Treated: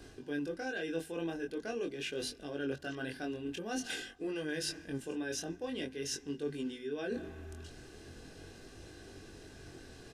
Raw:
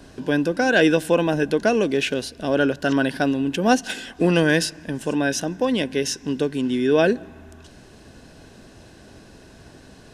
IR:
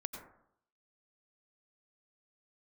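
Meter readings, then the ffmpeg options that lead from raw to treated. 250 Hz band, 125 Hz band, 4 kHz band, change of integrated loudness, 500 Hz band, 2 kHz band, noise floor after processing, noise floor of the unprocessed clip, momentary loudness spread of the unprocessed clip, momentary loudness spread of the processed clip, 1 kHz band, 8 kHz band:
−18.0 dB, −19.0 dB, −14.0 dB, −18.0 dB, −18.0 dB, −18.0 dB, −54 dBFS, −47 dBFS, 8 LU, 14 LU, −21.0 dB, −12.0 dB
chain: -af "equalizer=frequency=870:width_type=o:width=0.8:gain=-5.5,bandreject=frequency=50:width_type=h:width=6,bandreject=frequency=100:width_type=h:width=6,bandreject=frequency=150:width_type=h:width=6,bandreject=frequency=200:width_type=h:width=6,bandreject=frequency=250:width_type=h:width=6,aecho=1:1:2.5:0.41,areverse,acompressor=threshold=-30dB:ratio=10,areverse,flanger=delay=20:depth=4.3:speed=0.45,volume=-2dB"

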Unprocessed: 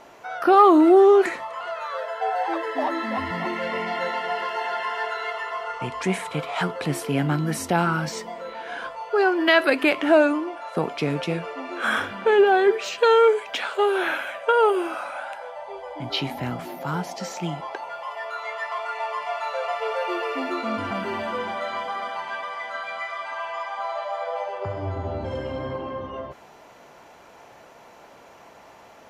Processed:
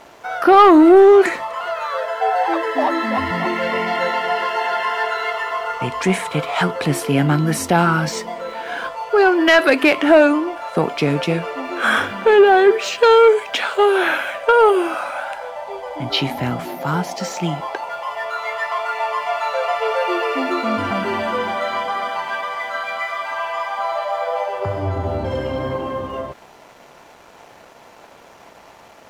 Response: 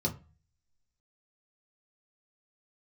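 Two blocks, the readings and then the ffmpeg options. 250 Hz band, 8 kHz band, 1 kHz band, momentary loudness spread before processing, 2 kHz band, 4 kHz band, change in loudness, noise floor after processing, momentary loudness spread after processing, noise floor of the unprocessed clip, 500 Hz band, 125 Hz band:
+6.0 dB, +7.0 dB, +6.0 dB, 15 LU, +6.5 dB, +6.5 dB, +6.0 dB, −45 dBFS, 14 LU, −49 dBFS, +6.0 dB, +7.0 dB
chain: -af "acontrast=90,aeval=exprs='sgn(val(0))*max(abs(val(0))-0.00422,0)':channel_layout=same"

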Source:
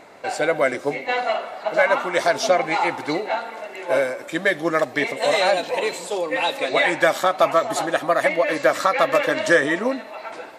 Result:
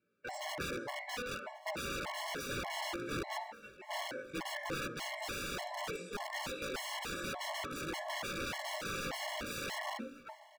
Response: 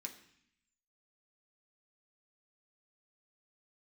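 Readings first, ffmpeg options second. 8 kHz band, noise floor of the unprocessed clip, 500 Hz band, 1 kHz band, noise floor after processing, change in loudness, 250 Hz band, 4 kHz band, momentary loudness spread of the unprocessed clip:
−10.5 dB, −39 dBFS, −23.5 dB, −19.0 dB, −58 dBFS, −19.0 dB, −17.0 dB, −12.0 dB, 8 LU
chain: -filter_complex "[0:a]agate=range=-21dB:threshold=-32dB:ratio=16:detection=peak,highpass=frequency=50:width=0.5412,highpass=frequency=50:width=1.3066[link_01];[1:a]atrim=start_sample=2205,afade=type=out:start_time=0.3:duration=0.01,atrim=end_sample=13671[link_02];[link_01][link_02]afir=irnorm=-1:irlink=0,flanger=delay=17:depth=2.3:speed=0.98,aeval=exprs='(mod(21.1*val(0)+1,2)-1)/21.1':channel_layout=same,lowpass=frequency=2600:poles=1,aecho=1:1:1135:0.0708,afftfilt=real='re*gt(sin(2*PI*1.7*pts/sr)*(1-2*mod(floor(b*sr/1024/560),2)),0)':imag='im*gt(sin(2*PI*1.7*pts/sr)*(1-2*mod(floor(b*sr/1024/560),2)),0)':win_size=1024:overlap=0.75,volume=-1.5dB"

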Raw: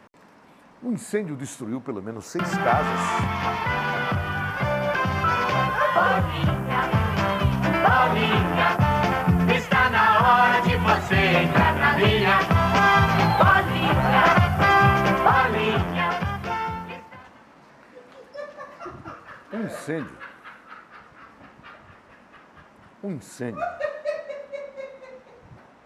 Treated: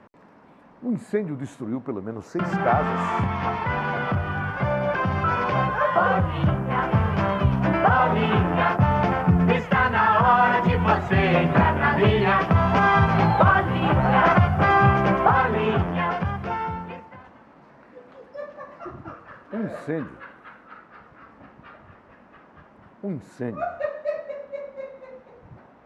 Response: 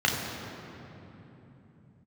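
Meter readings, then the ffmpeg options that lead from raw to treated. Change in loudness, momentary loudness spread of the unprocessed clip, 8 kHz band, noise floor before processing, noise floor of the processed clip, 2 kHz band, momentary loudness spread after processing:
−0.5 dB, 19 LU, below −10 dB, −52 dBFS, −52 dBFS, −3.0 dB, 17 LU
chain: -af "lowpass=frequency=1300:poles=1,volume=1.5dB"

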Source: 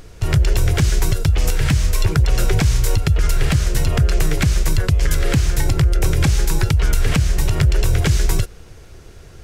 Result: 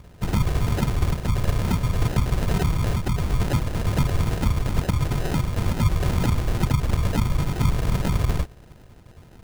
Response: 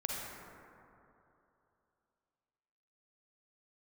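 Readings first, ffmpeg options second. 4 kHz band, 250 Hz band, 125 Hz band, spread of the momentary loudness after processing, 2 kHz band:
−8.5 dB, −1.5 dB, −5.0 dB, 2 LU, −8.0 dB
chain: -af "afftfilt=real='hypot(re,im)*cos(2*PI*random(0))':imag='hypot(re,im)*sin(2*PI*random(1))':win_size=512:overlap=0.75,acrusher=samples=39:mix=1:aa=0.000001"

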